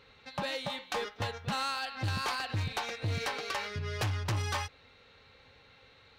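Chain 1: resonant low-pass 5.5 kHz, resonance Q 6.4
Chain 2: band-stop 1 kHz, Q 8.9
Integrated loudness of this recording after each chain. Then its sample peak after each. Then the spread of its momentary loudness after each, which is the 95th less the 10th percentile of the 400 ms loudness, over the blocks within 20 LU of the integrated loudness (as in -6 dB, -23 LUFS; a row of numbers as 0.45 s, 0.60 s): -31.5 LUFS, -35.0 LUFS; -16.0 dBFS, -23.5 dBFS; 5 LU, 4 LU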